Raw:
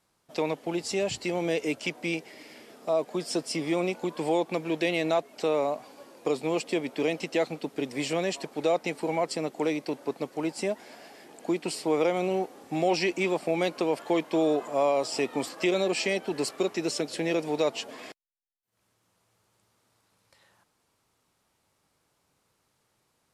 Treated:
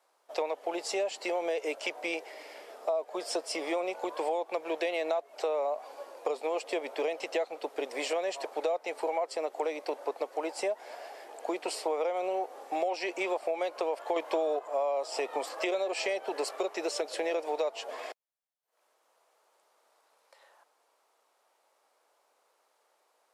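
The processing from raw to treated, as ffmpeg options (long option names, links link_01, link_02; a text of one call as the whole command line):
ffmpeg -i in.wav -filter_complex "[0:a]asettb=1/sr,asplit=3[link_01][link_02][link_03];[link_01]atrim=end=14.164[link_04];[link_02]atrim=start=14.16:end=14.59,asetpts=PTS-STARTPTS,afade=type=in:duration=0.004:curve=qsin,afade=type=out:start_time=0.426:duration=0.004:curve=qsin,acontrast=86[link_05];[link_03]atrim=start=14.586[link_06];[link_04][link_05]acrossfade=duration=0.004:curve1=hsin:curve2=qsin[link_07];[link_07][link_06]acrossfade=duration=0.004:curve1=qsin:curve2=hsin,highpass=frequency=570:width=0.5412,highpass=frequency=570:width=1.3066,tiltshelf=frequency=880:gain=8.5,acompressor=threshold=-34dB:ratio=6,volume=6dB" out.wav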